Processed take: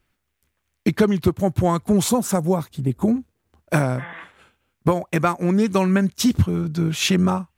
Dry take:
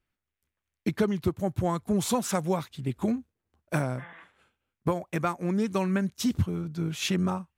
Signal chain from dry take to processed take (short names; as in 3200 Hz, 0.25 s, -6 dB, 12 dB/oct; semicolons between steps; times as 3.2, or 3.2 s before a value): 2.09–3.16 bell 2800 Hz -11 dB 2.5 oct; in parallel at -2 dB: compressor, threshold -37 dBFS, peak gain reduction 16 dB; on the sum: gain +7 dB